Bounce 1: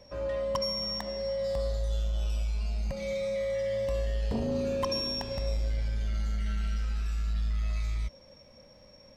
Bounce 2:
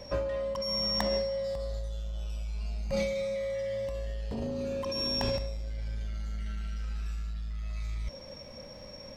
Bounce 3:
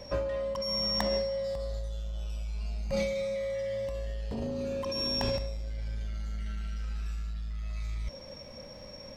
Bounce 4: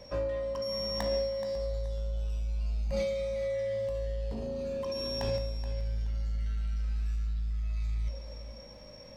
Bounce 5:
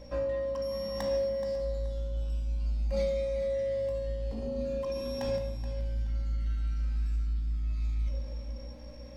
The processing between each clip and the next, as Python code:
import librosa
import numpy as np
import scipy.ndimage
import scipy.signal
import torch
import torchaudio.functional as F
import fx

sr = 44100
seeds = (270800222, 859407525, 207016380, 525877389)

y1 = fx.over_compress(x, sr, threshold_db=-36.0, ratio=-1.0)
y1 = y1 * librosa.db_to_amplitude(3.0)
y2 = y1
y3 = fx.comb_fb(y2, sr, f0_hz=55.0, decay_s=0.4, harmonics='all', damping=0.0, mix_pct=70)
y3 = fx.echo_feedback(y3, sr, ms=426, feedback_pct=25, wet_db=-12.0)
y3 = y3 * librosa.db_to_amplitude(1.5)
y4 = fx.add_hum(y3, sr, base_hz=60, snr_db=16)
y4 = fx.room_shoebox(y4, sr, seeds[0], volume_m3=3600.0, walls='furnished', distance_m=2.2)
y4 = y4 * librosa.db_to_amplitude(-3.0)